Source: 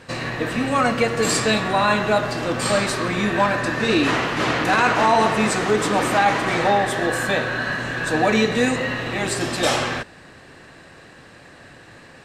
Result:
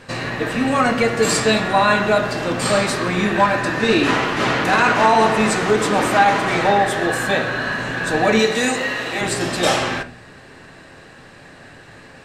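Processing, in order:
0:08.39–0:09.21: bass and treble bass −10 dB, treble +6 dB
convolution reverb RT60 0.30 s, pre-delay 5 ms, DRR 6.5 dB
level +1.5 dB

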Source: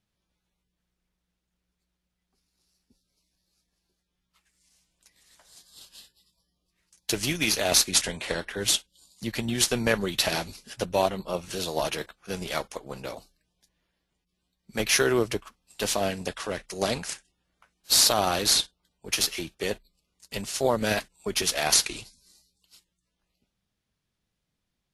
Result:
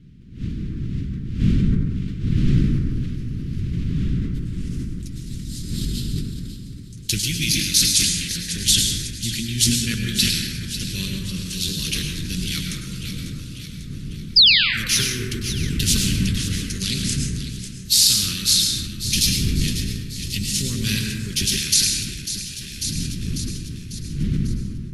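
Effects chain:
wind on the microphone 390 Hz −37 dBFS
sound drawn into the spectrogram fall, 0:14.36–0:14.88, 460–5,200 Hz −22 dBFS
delay that swaps between a low-pass and a high-pass 273 ms, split 1,300 Hz, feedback 70%, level −9.5 dB
automatic gain control gain up to 14.5 dB
Chebyshev band-stop filter 160–3,300 Hz, order 2
dense smooth reverb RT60 1.8 s, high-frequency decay 0.3×, pre-delay 90 ms, DRR 1 dB
level that may fall only so fast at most 44 dB per second
level −1 dB

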